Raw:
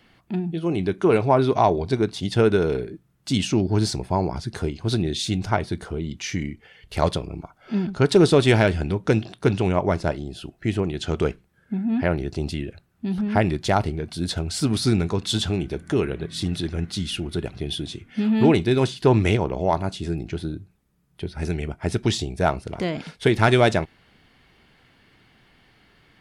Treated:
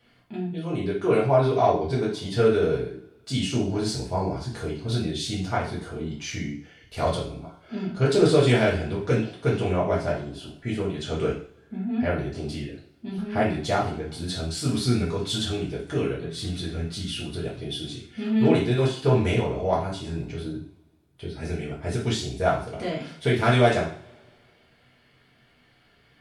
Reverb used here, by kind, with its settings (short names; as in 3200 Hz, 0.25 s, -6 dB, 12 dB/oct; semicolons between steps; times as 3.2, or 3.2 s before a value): two-slope reverb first 0.46 s, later 2.1 s, from -27 dB, DRR -7 dB; gain -10.5 dB